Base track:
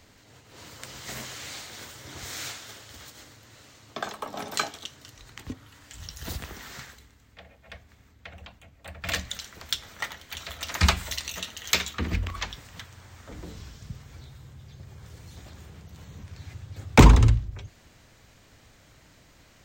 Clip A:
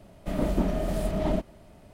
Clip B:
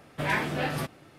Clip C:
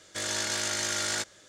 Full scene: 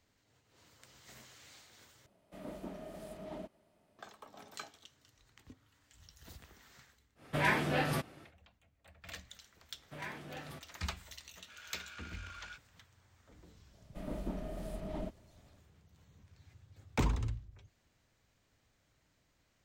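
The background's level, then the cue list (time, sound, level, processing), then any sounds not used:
base track −18.5 dB
0:02.06: overwrite with A −15.5 dB + high-pass filter 260 Hz 6 dB per octave
0:07.15: mix in B −2.5 dB, fades 0.10 s
0:09.73: mix in B −17.5 dB
0:11.34: mix in C −11 dB + pair of resonant band-passes 1,900 Hz, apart 0.71 octaves
0:13.69: mix in A −14 dB, fades 0.05 s

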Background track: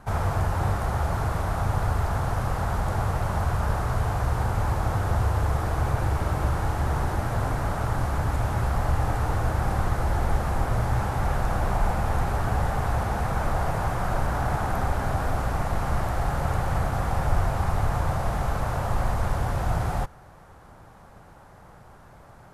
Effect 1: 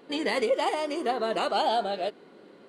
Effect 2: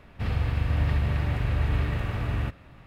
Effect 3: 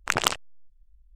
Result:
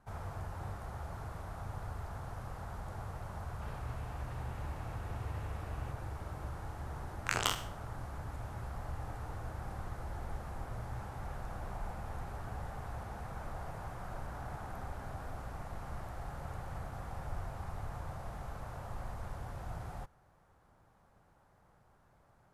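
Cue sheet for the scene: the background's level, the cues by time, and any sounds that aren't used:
background track −17.5 dB
0:03.42: mix in 2 −13 dB + downward compressor 2 to 1, threshold −34 dBFS
0:07.19: mix in 3 −12 dB + peak hold with a decay on every bin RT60 0.45 s
not used: 1

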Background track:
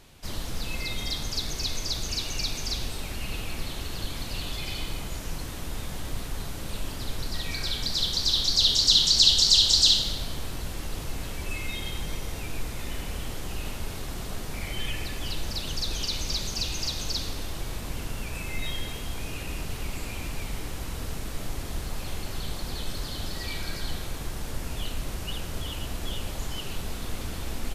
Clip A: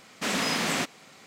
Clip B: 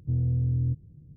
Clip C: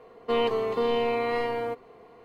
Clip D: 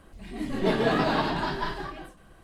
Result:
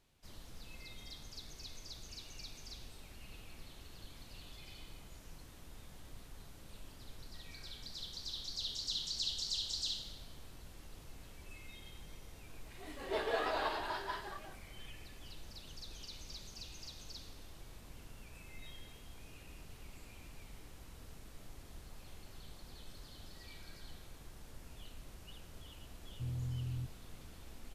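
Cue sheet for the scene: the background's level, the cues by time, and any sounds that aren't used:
background track −19.5 dB
0:12.47: mix in D −9.5 dB + high-pass filter 400 Hz 24 dB per octave
0:26.12: mix in B −14 dB
not used: A, C

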